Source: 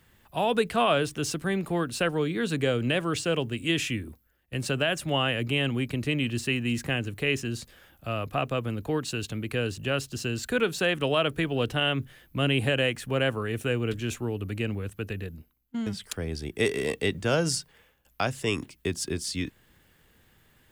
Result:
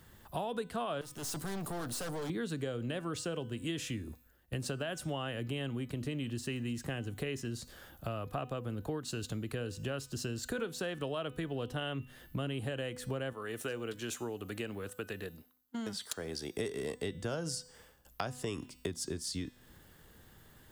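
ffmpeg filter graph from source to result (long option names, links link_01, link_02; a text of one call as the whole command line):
ffmpeg -i in.wav -filter_complex "[0:a]asettb=1/sr,asplit=3[link_01][link_02][link_03];[link_01]atrim=end=1.014[link_04];[link_02]atrim=start=1.01:end=2.3,asetpts=PTS-STARTPTS,afade=type=in:duration=0.004:curve=qsin,afade=type=out:start_time=1.286:duration=0.004:curve=qsin,highpass=frequency=57:width=0.5412,highpass=frequency=57:width=1.3066,aemphasis=mode=production:type=cd,aeval=exprs='(tanh(79.4*val(0)+0.3)-tanh(0.3))/79.4':channel_layout=same[link_05];[link_03]atrim=start=2.296[link_06];[link_04][link_05]acrossfade=duration=0.004:curve1=hsin:curve2=qsin[link_07];[link_07][link_06]acrossfade=duration=0.004:curve1=qsin:curve2=hsin,asettb=1/sr,asplit=3[link_08][link_09][link_10];[link_08]atrim=end=13.334[link_11];[link_09]atrim=start=13.33:end=16.57,asetpts=PTS-STARTPTS,afade=type=in:duration=0.004:curve=qsin,afade=type=out:start_time=3.236:duration=0.004:curve=qsin,highpass=frequency=580:poles=1,volume=20.5dB,asoftclip=hard,volume=-20.5dB[link_12];[link_10]atrim=start=16.566[link_13];[link_11][link_12]acrossfade=duration=0.004:curve1=hsin:curve2=qsin[link_14];[link_14][link_13]acrossfade=duration=0.004:curve1=qsin:curve2=hsin,equalizer=frequency=2400:width=2.1:gain=-8.5,bandreject=frequency=249.9:width_type=h:width=4,bandreject=frequency=499.8:width_type=h:width=4,bandreject=frequency=749.7:width_type=h:width=4,bandreject=frequency=999.6:width_type=h:width=4,bandreject=frequency=1249.5:width_type=h:width=4,bandreject=frequency=1499.4:width_type=h:width=4,bandreject=frequency=1749.3:width_type=h:width=4,bandreject=frequency=1999.2:width_type=h:width=4,bandreject=frequency=2249.1:width_type=h:width=4,bandreject=frequency=2499:width_type=h:width=4,bandreject=frequency=2748.9:width_type=h:width=4,bandreject=frequency=2998.8:width_type=h:width=4,bandreject=frequency=3248.7:width_type=h:width=4,bandreject=frequency=3498.6:width_type=h:width=4,bandreject=frequency=3748.5:width_type=h:width=4,bandreject=frequency=3998.4:width_type=h:width=4,bandreject=frequency=4248.3:width_type=h:width=4,bandreject=frequency=4498.2:width_type=h:width=4,bandreject=frequency=4748.1:width_type=h:width=4,bandreject=frequency=4998:width_type=h:width=4,bandreject=frequency=5247.9:width_type=h:width=4,bandreject=frequency=5497.8:width_type=h:width=4,bandreject=frequency=5747.7:width_type=h:width=4,bandreject=frequency=5997.6:width_type=h:width=4,bandreject=frequency=6247.5:width_type=h:width=4,bandreject=frequency=6497.4:width_type=h:width=4,bandreject=frequency=6747.3:width_type=h:width=4,bandreject=frequency=6997.2:width_type=h:width=4,bandreject=frequency=7247.1:width_type=h:width=4,bandreject=frequency=7497:width_type=h:width=4,bandreject=frequency=7746.9:width_type=h:width=4,bandreject=frequency=7996.8:width_type=h:width=4,bandreject=frequency=8246.7:width_type=h:width=4,bandreject=frequency=8496.6:width_type=h:width=4,bandreject=frequency=8746.5:width_type=h:width=4,bandreject=frequency=8996.4:width_type=h:width=4,acompressor=threshold=-39dB:ratio=5,volume=3.5dB" out.wav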